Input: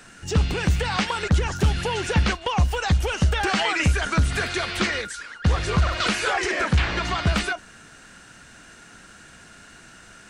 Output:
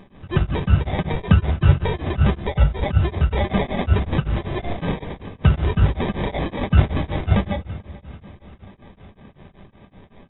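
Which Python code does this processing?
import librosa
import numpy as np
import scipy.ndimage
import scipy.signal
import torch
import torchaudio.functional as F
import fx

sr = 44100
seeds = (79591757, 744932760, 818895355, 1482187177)

y = fx.pitch_trill(x, sr, semitones=-3.5, every_ms=276)
y = scipy.signal.sosfilt(scipy.signal.butter(2, 60.0, 'highpass', fs=sr, output='sos'), y)
y = fx.peak_eq(y, sr, hz=88.0, db=9.0, octaves=1.8)
y = fx.sample_hold(y, sr, seeds[0], rate_hz=1400.0, jitter_pct=0)
y = fx.brickwall_lowpass(y, sr, high_hz=3900.0)
y = fx.doubler(y, sr, ms=21.0, db=-13)
y = fx.echo_feedback(y, sr, ms=438, feedback_pct=60, wet_db=-19.5)
y = fx.room_shoebox(y, sr, seeds[1], volume_m3=2500.0, walls='furnished', distance_m=1.2)
y = y * np.abs(np.cos(np.pi * 5.3 * np.arange(len(y)) / sr))
y = y * 10.0 ** (1.5 / 20.0)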